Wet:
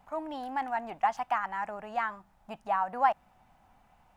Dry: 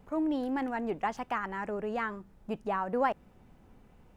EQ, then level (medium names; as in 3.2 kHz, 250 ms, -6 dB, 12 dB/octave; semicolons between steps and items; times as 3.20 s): resonant low shelf 570 Hz -8.5 dB, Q 3; 0.0 dB